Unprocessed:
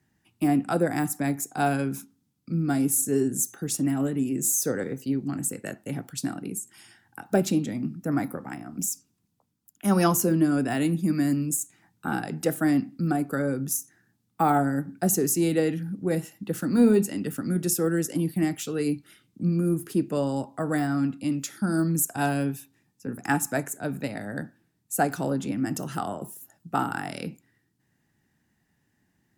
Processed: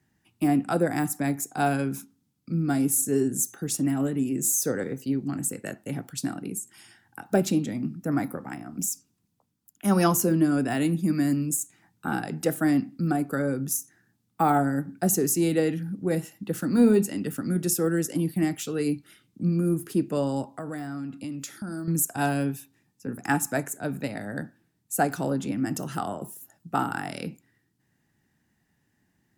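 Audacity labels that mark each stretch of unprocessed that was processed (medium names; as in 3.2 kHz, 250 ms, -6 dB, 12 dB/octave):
20.560000	21.880000	compression, threshold -31 dBFS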